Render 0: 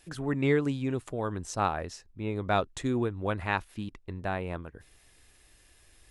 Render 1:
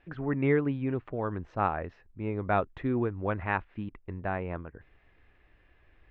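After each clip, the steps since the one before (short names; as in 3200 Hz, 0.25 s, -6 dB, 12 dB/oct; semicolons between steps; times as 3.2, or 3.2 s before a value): LPF 2400 Hz 24 dB/oct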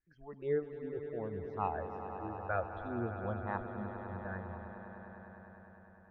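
spectral noise reduction 20 dB; phaser stages 6, 0.34 Hz, lowest notch 170–2800 Hz; swelling echo 0.101 s, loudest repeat 5, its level -12.5 dB; gain -5.5 dB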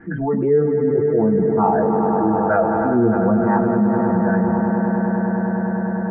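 LPF 1900 Hz 24 dB/oct; reverb RT60 0.15 s, pre-delay 3 ms, DRR -3.5 dB; fast leveller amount 70%; gain -5.5 dB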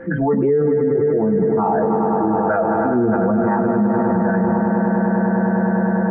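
low shelf 84 Hz -7.5 dB; whine 520 Hz -40 dBFS; maximiser +14.5 dB; gain -9 dB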